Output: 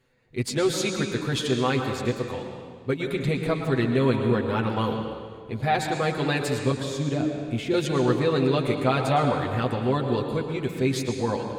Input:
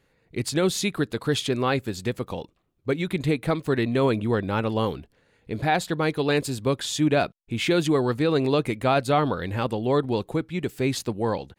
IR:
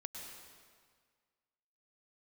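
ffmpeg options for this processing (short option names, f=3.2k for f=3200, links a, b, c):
-filter_complex "[0:a]asettb=1/sr,asplit=3[a][b][c];[a]atrim=end=6.714[d];[b]atrim=start=6.71:end=7.74,asetpts=PTS-STARTPTS,afade=t=in:d=0.004:c=qsin,afade=t=out:st=1.026:d=0.004:c=qsin,acrossover=split=490[e][f];[f]acompressor=threshold=-36dB:ratio=4[g];[e][g]amix=inputs=2:normalize=0[h];[c]atrim=start=7.736[i];[d][h]acrossfade=d=0.004:c1=hsin:c2=qsin[j];[j][i]acrossfade=d=0.004:c1=qsin:c2=hsin,asplit=2[k][l];[l]lowpass=f=8.8k:w=0.5412,lowpass=f=8.8k:w=1.3066[m];[1:a]atrim=start_sample=2205,adelay=8[n];[m][n]afir=irnorm=-1:irlink=0,volume=4dB[o];[k][o]amix=inputs=2:normalize=0,volume=-4dB"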